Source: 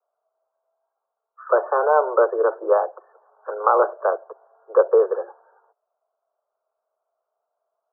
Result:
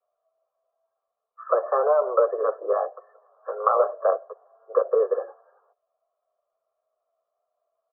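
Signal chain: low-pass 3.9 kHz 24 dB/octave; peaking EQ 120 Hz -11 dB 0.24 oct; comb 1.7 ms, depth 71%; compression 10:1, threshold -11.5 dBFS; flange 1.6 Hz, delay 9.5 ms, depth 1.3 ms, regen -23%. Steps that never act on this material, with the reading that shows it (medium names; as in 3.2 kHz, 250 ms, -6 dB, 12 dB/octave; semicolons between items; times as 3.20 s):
low-pass 3.9 kHz: input has nothing above 1.6 kHz; peaking EQ 120 Hz: input has nothing below 320 Hz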